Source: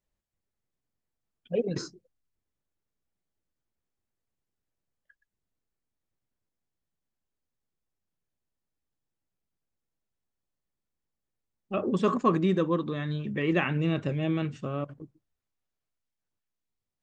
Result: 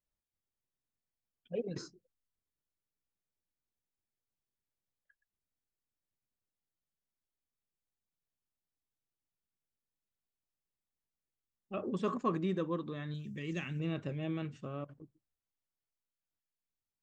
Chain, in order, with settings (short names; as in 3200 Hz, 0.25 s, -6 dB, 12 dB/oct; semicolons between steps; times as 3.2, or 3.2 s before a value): 13.14–13.8 EQ curve 170 Hz 0 dB, 900 Hz -13 dB, 3900 Hz +2 dB, 5900 Hz +14 dB; gain -9 dB